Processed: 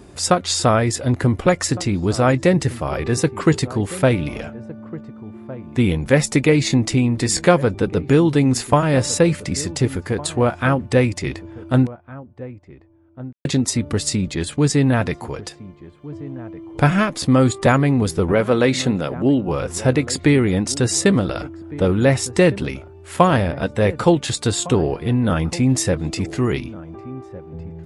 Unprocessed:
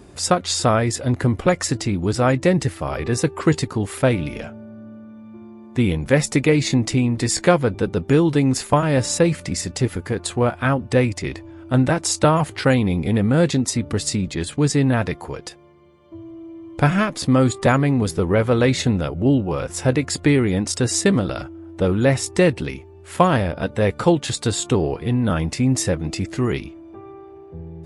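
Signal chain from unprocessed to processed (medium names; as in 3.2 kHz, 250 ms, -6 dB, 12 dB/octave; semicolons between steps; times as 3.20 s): 11.87–13.45 s: mute; 18.32–19.48 s: high-pass 160 Hz 12 dB/octave; echo from a far wall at 250 m, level -17 dB; trim +1.5 dB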